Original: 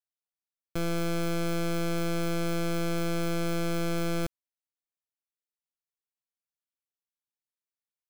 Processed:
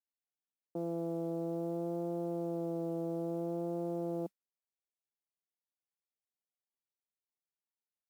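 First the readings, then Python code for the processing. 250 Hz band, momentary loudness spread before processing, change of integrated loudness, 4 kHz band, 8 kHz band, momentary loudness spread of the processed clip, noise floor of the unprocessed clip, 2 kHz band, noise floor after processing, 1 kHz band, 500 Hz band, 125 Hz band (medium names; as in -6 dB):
-5.5 dB, 2 LU, -6.5 dB, under -30 dB, under -20 dB, 2 LU, under -85 dBFS, under -30 dB, under -85 dBFS, -8.5 dB, -4.0 dB, -10.0 dB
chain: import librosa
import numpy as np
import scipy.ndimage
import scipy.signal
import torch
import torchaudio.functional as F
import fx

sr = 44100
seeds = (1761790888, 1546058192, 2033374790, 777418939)

y = scipy.signal.sosfilt(scipy.signal.ellip(3, 1.0, 40, [190.0, 870.0], 'bandpass', fs=sr, output='sos'), x)
y = fx.mod_noise(y, sr, seeds[0], snr_db=32)
y = fx.vibrato(y, sr, rate_hz=0.59, depth_cents=23.0)
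y = y * librosa.db_to_amplitude(-3.5)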